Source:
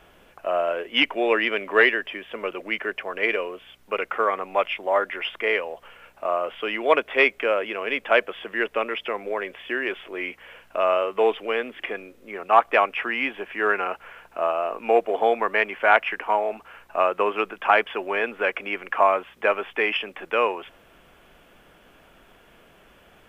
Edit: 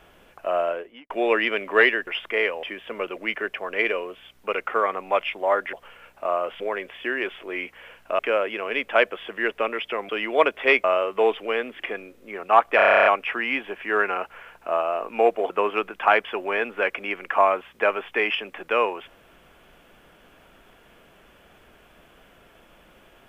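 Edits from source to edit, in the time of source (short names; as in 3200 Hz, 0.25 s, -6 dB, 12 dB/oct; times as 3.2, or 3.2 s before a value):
0.61–1.1 studio fade out
5.17–5.73 move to 2.07
6.6–7.35 swap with 9.25–10.84
12.76 stutter 0.03 s, 11 plays
15.2–17.12 cut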